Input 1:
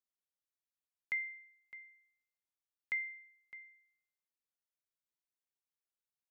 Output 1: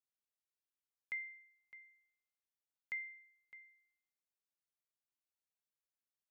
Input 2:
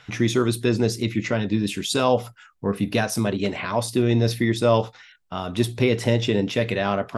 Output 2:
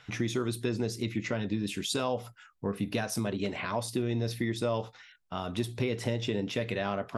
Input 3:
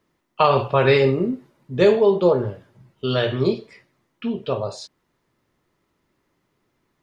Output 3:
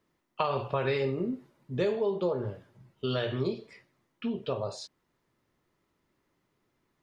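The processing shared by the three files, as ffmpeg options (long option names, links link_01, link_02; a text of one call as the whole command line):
ffmpeg -i in.wav -af "acompressor=threshold=-22dB:ratio=3,volume=-5.5dB" out.wav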